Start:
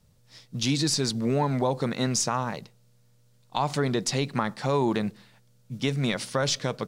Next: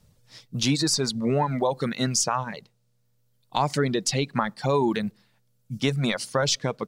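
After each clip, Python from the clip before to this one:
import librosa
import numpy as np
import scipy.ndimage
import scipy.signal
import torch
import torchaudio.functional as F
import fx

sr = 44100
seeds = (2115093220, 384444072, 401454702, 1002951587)

y = fx.dereverb_blind(x, sr, rt60_s=1.8)
y = F.gain(torch.from_numpy(y), 3.0).numpy()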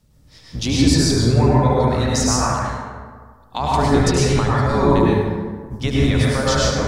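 y = fx.octave_divider(x, sr, octaves=1, level_db=1.0)
y = fx.echo_feedback(y, sr, ms=74, feedback_pct=55, wet_db=-10.0)
y = fx.rev_plate(y, sr, seeds[0], rt60_s=1.6, hf_ratio=0.4, predelay_ms=90, drr_db=-6.0)
y = F.gain(torch.from_numpy(y), -1.0).numpy()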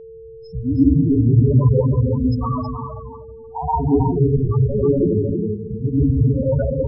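y = fx.spec_topn(x, sr, count=4)
y = y + 10.0 ** (-7.0 / 20.0) * np.pad(y, (int(318 * sr / 1000.0), 0))[:len(y)]
y = y + 10.0 ** (-39.0 / 20.0) * np.sin(2.0 * np.pi * 450.0 * np.arange(len(y)) / sr)
y = F.gain(torch.from_numpy(y), 3.0).numpy()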